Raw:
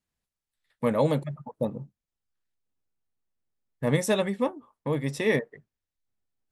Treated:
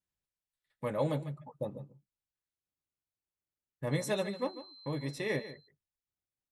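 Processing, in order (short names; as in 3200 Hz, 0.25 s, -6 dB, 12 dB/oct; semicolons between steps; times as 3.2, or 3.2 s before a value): notch comb 230 Hz; 3.91–5.52 whine 4100 Hz -43 dBFS; echo 0.146 s -14 dB; gain -7 dB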